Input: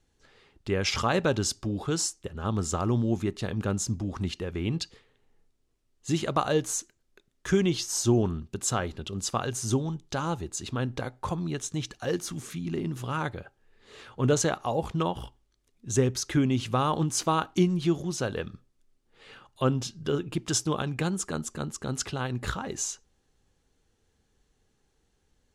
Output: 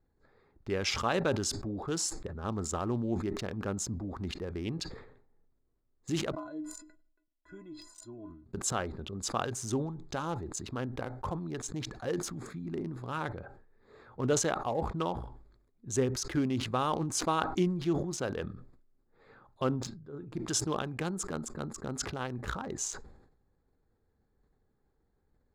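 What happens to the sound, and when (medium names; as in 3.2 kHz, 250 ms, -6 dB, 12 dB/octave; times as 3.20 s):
6.32–8.46 s: inharmonic resonator 300 Hz, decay 0.23 s, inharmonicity 0.03
19.64–20.46 s: dip -15.5 dB, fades 0.35 s
whole clip: local Wiener filter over 15 samples; dynamic bell 120 Hz, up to -6 dB, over -38 dBFS, Q 0.84; decay stretcher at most 69 dB/s; trim -3.5 dB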